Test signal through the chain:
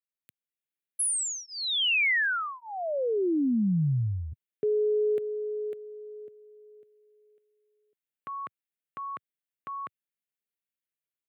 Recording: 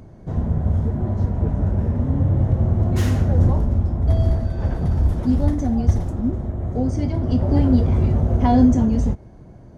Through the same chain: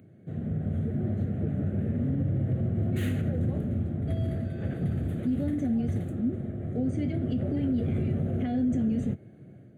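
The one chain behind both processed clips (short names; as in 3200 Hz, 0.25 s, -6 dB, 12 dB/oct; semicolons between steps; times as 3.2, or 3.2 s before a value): HPF 110 Hz 24 dB/oct; limiter -17 dBFS; AGC gain up to 5 dB; fixed phaser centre 2300 Hz, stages 4; gain -7.5 dB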